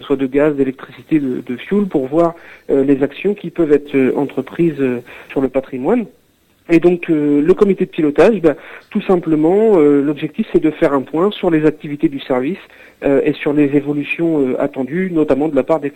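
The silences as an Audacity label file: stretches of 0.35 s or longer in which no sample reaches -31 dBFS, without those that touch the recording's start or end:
6.070000	6.690000	silence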